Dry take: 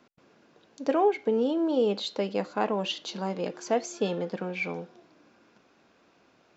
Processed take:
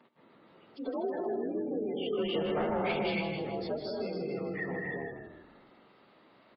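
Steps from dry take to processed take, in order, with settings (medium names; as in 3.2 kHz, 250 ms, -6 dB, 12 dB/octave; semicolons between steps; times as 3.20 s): frequency axis rescaled in octaves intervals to 90%; high-pass 100 Hz 12 dB/octave; gated-style reverb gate 330 ms rising, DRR 1.5 dB; compression 3:1, threshold -36 dBFS, peak gain reduction 12.5 dB; 2.13–3.21 s: waveshaping leveller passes 2; saturation -27.5 dBFS, distortion -20 dB; spectral gate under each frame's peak -25 dB strong; on a send: frequency-shifting echo 158 ms, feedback 39%, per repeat -41 Hz, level -7.5 dB; on the sum: trim +2 dB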